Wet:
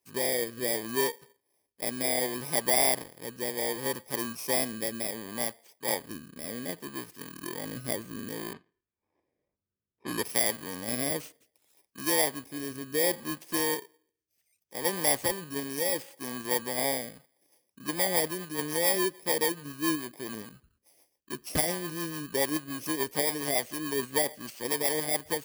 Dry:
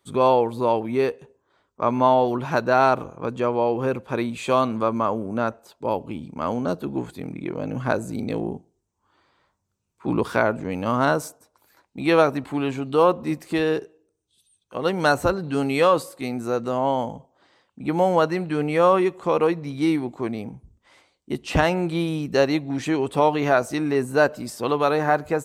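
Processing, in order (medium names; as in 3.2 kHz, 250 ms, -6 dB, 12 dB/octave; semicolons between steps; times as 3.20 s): bit-reversed sample order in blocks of 32 samples; 8.53–10.23 s: level-controlled noise filter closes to 1.7 kHz, open at -24 dBFS; bass shelf 240 Hz -11.5 dB; in parallel at -2 dB: level held to a coarse grid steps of 12 dB; on the sum: rotary cabinet horn 0.65 Hz, later 7 Hz, at 16.89 s; trim -7 dB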